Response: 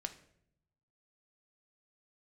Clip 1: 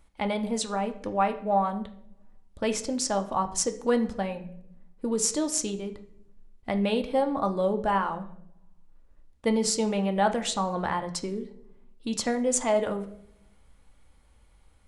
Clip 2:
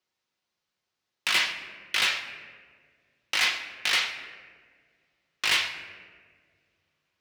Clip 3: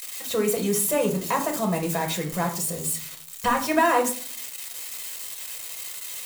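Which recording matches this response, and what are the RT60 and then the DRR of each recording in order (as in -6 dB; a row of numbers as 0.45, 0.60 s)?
1; 0.70, 1.9, 0.50 s; 6.0, 3.5, 2.0 dB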